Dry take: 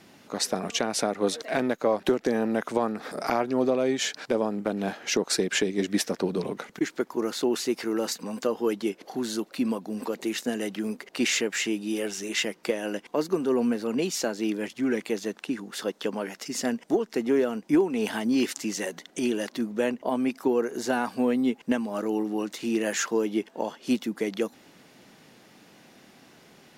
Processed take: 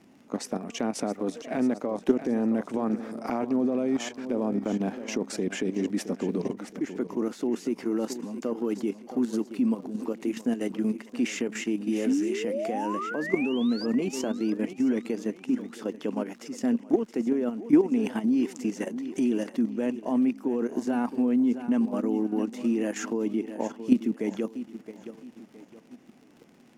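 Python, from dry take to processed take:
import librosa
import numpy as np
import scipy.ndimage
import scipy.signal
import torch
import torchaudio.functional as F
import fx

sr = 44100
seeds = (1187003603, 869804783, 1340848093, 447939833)

y = fx.spec_paint(x, sr, seeds[0], shape='rise', start_s=12.06, length_s=1.8, low_hz=240.0, high_hz=5100.0, level_db=-28.0)
y = fx.echo_feedback(y, sr, ms=668, feedback_pct=41, wet_db=-13.5)
y = fx.level_steps(y, sr, step_db=10)
y = fx.graphic_eq_15(y, sr, hz=(250, 1600, 4000), db=(9, -4, -10))
y = fx.dmg_crackle(y, sr, seeds[1], per_s=58.0, level_db=-43.0)
y = fx.high_shelf(y, sr, hz=10000.0, db=-12.0)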